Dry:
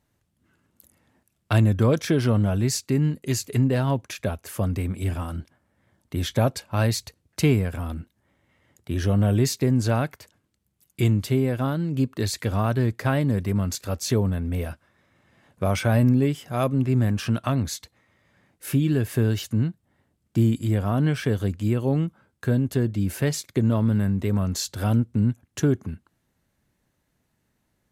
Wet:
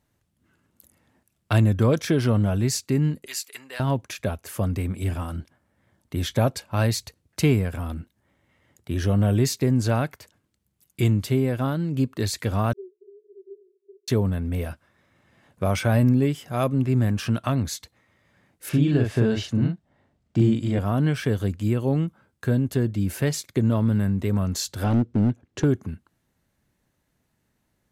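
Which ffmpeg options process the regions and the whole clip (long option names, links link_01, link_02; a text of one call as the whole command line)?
ffmpeg -i in.wav -filter_complex "[0:a]asettb=1/sr,asplit=3[link_01][link_02][link_03];[link_01]atrim=end=3.264[link_04];[link_02]atrim=start=3.26:end=3.8,asetpts=PTS-STARTPTS,afade=type=in:duration=0.004:curve=qsin,afade=type=out:start_time=0.536:duration=0.004:curve=qsin,highpass=1300,bandreject=frequency=6500:width=12[link_05];[link_03]atrim=start=3.796[link_06];[link_04][link_05]acrossfade=duration=0.004:curve1=hsin:curve2=qsin[link_07];[link_07][link_06]acrossfade=duration=0.004:curve1=qsin:curve2=hsin,asettb=1/sr,asplit=3[link_08][link_09][link_10];[link_08]atrim=end=12.734[link_11];[link_09]atrim=start=12.73:end=14.08,asetpts=PTS-STARTPTS,afade=type=in:duration=0.004:curve=qsin,afade=type=out:start_time=1.346:duration=0.004:curve=qsin,acompressor=threshold=-26dB:ratio=6:attack=3.2:release=140:knee=1:detection=peak,asuperpass=centerf=390:order=12:qfactor=6.5[link_12];[link_10]atrim=start=14.076[link_13];[link_11][link_12]acrossfade=duration=0.004:curve1=hsin:curve2=qsin[link_14];[link_14][link_13]acrossfade=duration=0.004:curve1=qsin:curve2=hsin,asettb=1/sr,asplit=3[link_15][link_16][link_17];[link_15]atrim=end=18.694[link_18];[link_16]atrim=start=18.69:end=20.79,asetpts=PTS-STARTPTS,afade=type=in:duration=0.004:curve=qsin,afade=type=out:start_time=2.096:duration=0.004:curve=qsin,lowpass=5600,equalizer=frequency=670:width=2.4:gain=5,asplit=2[link_19][link_20];[link_20]adelay=41,volume=-3dB[link_21];[link_19][link_21]amix=inputs=2:normalize=0,atrim=end_sample=92610[link_22];[link_17]atrim=start=20.786[link_23];[link_18][link_22]acrossfade=duration=0.004:curve1=hsin:curve2=qsin[link_24];[link_24][link_23]acrossfade=duration=0.004:curve1=qsin:curve2=hsin,asettb=1/sr,asplit=3[link_25][link_26][link_27];[link_25]atrim=end=24.844[link_28];[link_26]atrim=start=24.84:end=25.64,asetpts=PTS-STARTPTS,afade=type=in:duration=0.004:curve=qsin,afade=type=out:start_time=0.796:duration=0.004:curve=qsin,lowpass=5500,equalizer=frequency=400:width_type=o:width=1.2:gain=9,aeval=exprs='clip(val(0),-1,0.178)':channel_layout=same[link_29];[link_27]atrim=start=25.636[link_30];[link_28][link_29]acrossfade=duration=0.004:curve1=hsin:curve2=qsin[link_31];[link_31][link_30]acrossfade=duration=0.004:curve1=qsin:curve2=hsin" out.wav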